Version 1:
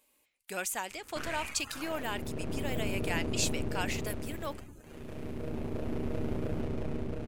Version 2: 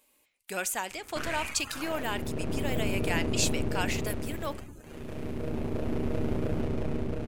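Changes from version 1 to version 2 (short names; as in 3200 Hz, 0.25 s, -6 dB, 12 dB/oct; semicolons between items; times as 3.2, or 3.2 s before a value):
speech: send on; background +4.0 dB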